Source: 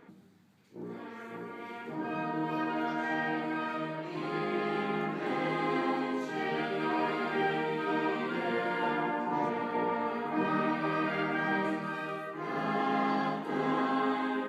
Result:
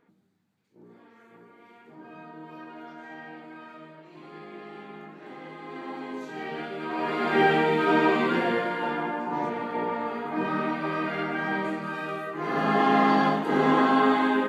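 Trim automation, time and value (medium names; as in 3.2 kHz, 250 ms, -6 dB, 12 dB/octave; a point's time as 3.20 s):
5.62 s -10.5 dB
6.17 s -2 dB
6.87 s -2 dB
7.38 s +9.5 dB
8.32 s +9.5 dB
8.77 s +2 dB
11.72 s +2 dB
12.86 s +9 dB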